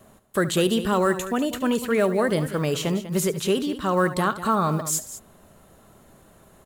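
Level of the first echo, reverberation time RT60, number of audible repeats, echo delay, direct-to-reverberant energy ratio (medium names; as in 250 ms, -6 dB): -15.5 dB, no reverb, 2, 72 ms, no reverb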